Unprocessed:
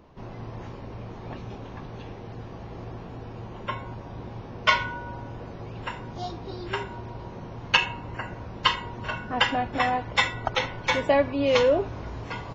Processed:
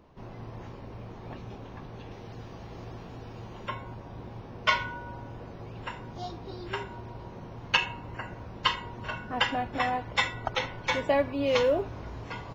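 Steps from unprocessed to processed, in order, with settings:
0:02.11–0:03.69: high-shelf EQ 3,200 Hz +8.5 dB
floating-point word with a short mantissa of 6 bits
level −4 dB

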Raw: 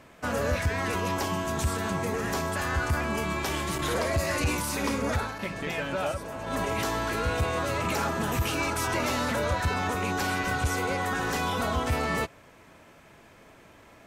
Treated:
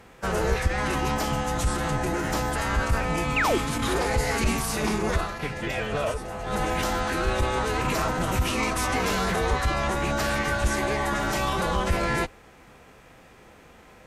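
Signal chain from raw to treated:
sub-octave generator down 2 octaves, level −5 dB
phase-vocoder pitch shift with formants kept −4.5 semitones
sound drawn into the spectrogram fall, 0:03.36–0:03.58, 290–3,000 Hz −26 dBFS
level +3 dB

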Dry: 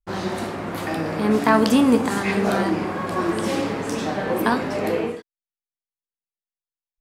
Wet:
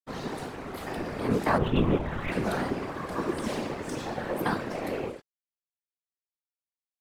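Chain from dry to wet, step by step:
0:01.58–0:02.32: linear-prediction vocoder at 8 kHz whisper
dead-zone distortion −42.5 dBFS
random phases in short frames
level −7.5 dB

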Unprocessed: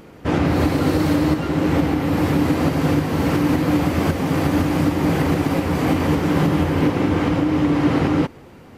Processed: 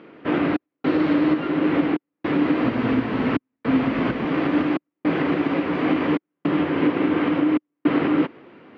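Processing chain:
gate pattern "xxxx..xxxx" 107 BPM −60 dB
loudspeaker in its box 270–3,200 Hz, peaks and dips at 310 Hz +3 dB, 520 Hz −3 dB, 820 Hz −6 dB
0:02.64–0:04.25: frequency shifter −34 Hz

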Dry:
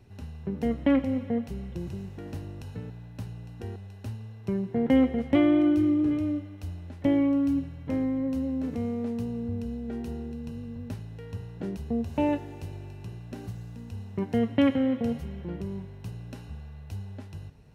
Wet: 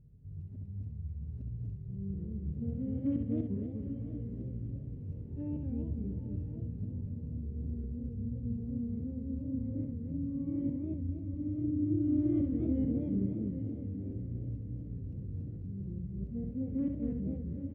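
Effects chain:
played backwards from end to start
high-shelf EQ 2,800 Hz −9 dB
repeating echo 67 ms, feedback 36%, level −5.5 dB
gain into a clipping stage and back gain 13.5 dB
drawn EQ curve 130 Hz 0 dB, 500 Hz −14 dB, 770 Hz −29 dB
feedback delay with all-pass diffusion 836 ms, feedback 41%, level −9.5 dB
feedback echo with a swinging delay time 249 ms, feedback 35%, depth 210 cents, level −4 dB
level −3 dB

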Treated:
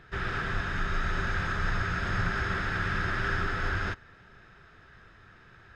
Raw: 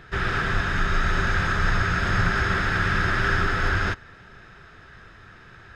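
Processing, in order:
high-shelf EQ 6,900 Hz −4.5 dB
level −7 dB

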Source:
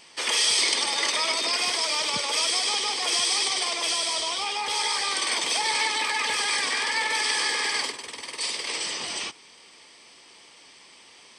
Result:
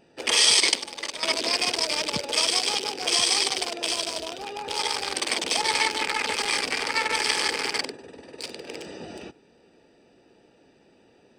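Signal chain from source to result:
adaptive Wiener filter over 41 samples
0:00.60–0:01.23: noise gate −26 dBFS, range −11 dB
level +6.5 dB

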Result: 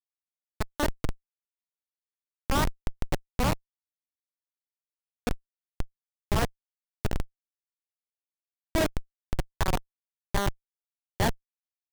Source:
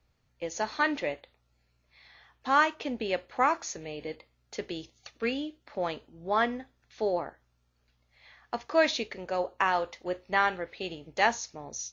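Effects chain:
feedback delay network reverb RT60 2.3 s, low-frequency decay 1.3×, high-frequency decay 0.4×, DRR 8.5 dB
tape wow and flutter 28 cents
comparator with hysteresis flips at −20 dBFS
level +8 dB

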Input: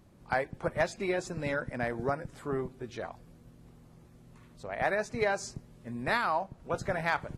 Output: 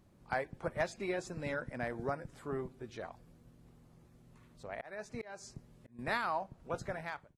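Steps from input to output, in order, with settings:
fade-out on the ending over 0.61 s
0:04.69–0:05.99: volume swells 405 ms
level −5.5 dB

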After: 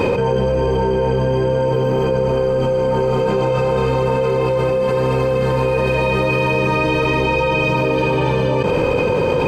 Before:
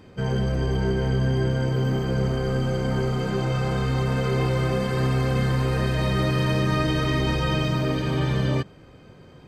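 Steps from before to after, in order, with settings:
hollow resonant body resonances 500/900/2,500 Hz, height 17 dB, ringing for 30 ms
envelope flattener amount 100%
level −5.5 dB

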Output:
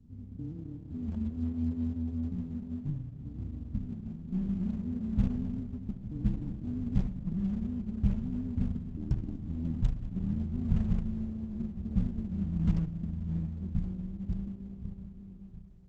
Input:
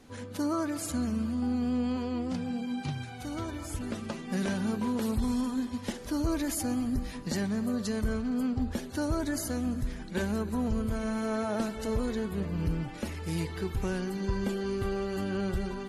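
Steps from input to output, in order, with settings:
fade-out on the ending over 3.23 s
spectral tilt −3.5 dB per octave
hum removal 107.9 Hz, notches 12
amplitude modulation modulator 160 Hz, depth 85%, from 0:08.72 modulator 80 Hz, from 0:10.37 modulator 140 Hz
transistor ladder low-pass 240 Hz, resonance 40%
four-comb reverb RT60 3.7 s, combs from 33 ms, DRR 8.5 dB
buffer that repeats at 0:01.11, samples 512, times 2
Opus 10 kbit/s 48,000 Hz

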